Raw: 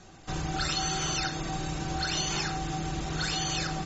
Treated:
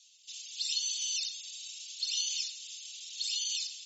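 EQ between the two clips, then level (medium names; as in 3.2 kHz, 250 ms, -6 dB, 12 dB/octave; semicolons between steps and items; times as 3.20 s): steep high-pass 2.9 kHz 48 dB/octave; 0.0 dB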